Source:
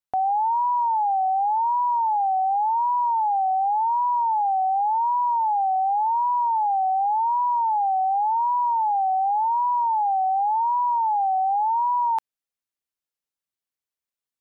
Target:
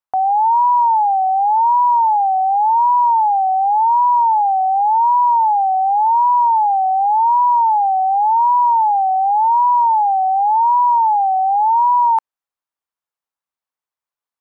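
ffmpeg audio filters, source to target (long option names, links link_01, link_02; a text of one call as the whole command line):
ffmpeg -i in.wav -af "equalizer=frequency=1000:width_type=o:width=1.6:gain=13,volume=-4dB" out.wav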